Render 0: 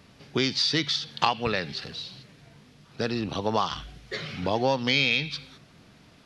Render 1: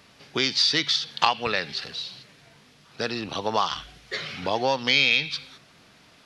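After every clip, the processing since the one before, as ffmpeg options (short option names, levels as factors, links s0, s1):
-af "lowshelf=f=390:g=-11,volume=1.58"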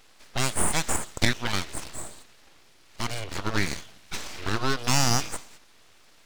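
-af "aeval=exprs='abs(val(0))':c=same"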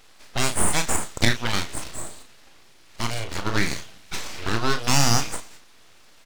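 -filter_complex "[0:a]asplit=2[s0][s1];[s1]adelay=35,volume=0.398[s2];[s0][s2]amix=inputs=2:normalize=0,volume=1.33"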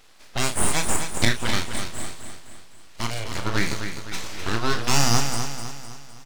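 -af "aecho=1:1:255|510|765|1020|1275:0.398|0.187|0.0879|0.0413|0.0194,volume=0.891"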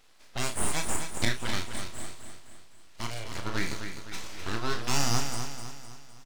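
-filter_complex "[0:a]asplit=2[s0][s1];[s1]adelay=32,volume=0.237[s2];[s0][s2]amix=inputs=2:normalize=0,volume=0.422"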